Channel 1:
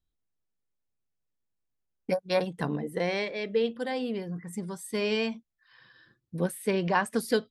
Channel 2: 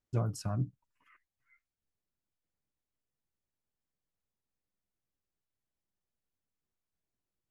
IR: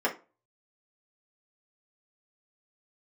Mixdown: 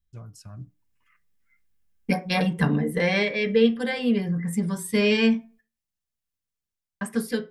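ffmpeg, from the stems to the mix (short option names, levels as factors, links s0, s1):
-filter_complex "[0:a]crystalizer=i=3:c=0,bass=f=250:g=12,treble=f=4000:g=-14,volume=0.668,asplit=3[s0][s1][s2];[s0]atrim=end=5.61,asetpts=PTS-STARTPTS,afade=t=out:st=5.606:d=0.004:c=hsin[s3];[s1]atrim=start=5.61:end=7.01,asetpts=PTS-STARTPTS,volume=0[s4];[s2]atrim=start=7.01,asetpts=PTS-STARTPTS,afade=t=in:d=0.004:c=hsin[s5];[s3][s4][s5]concat=n=3:v=0:a=1,asplit=2[s6][s7];[s7]volume=0.422[s8];[1:a]volume=0.531,asplit=2[s9][s10];[s10]volume=0.075[s11];[2:a]atrim=start_sample=2205[s12];[s8][s11]amix=inputs=2:normalize=0[s13];[s13][s12]afir=irnorm=-1:irlink=0[s14];[s6][s9][s14]amix=inputs=3:normalize=0,equalizer=f=500:w=0.35:g=-10.5,dynaudnorm=f=140:g=11:m=2.82"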